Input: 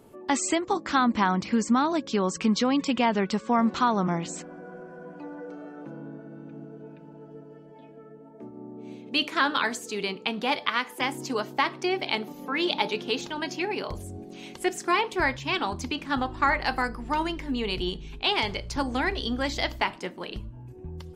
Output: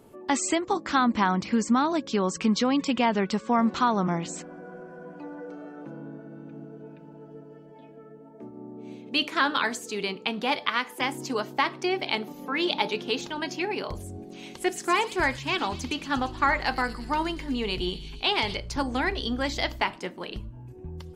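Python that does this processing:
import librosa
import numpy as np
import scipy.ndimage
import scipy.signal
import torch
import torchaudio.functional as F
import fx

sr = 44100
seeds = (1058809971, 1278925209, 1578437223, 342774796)

y = fx.echo_wet_highpass(x, sr, ms=116, feedback_pct=66, hz=5000.0, wet_db=-5, at=(14.35, 18.56))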